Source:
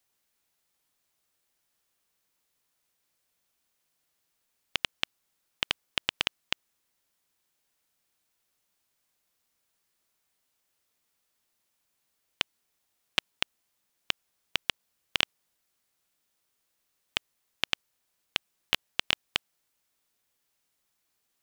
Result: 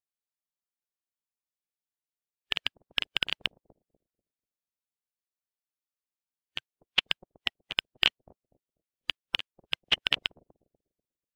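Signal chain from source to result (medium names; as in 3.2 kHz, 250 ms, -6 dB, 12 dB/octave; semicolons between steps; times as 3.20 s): bucket-brigade echo 461 ms, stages 2048, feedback 39%, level -8.5 dB; time stretch by phase-locked vocoder 0.53×; spectral contrast expander 1.5:1; trim +6 dB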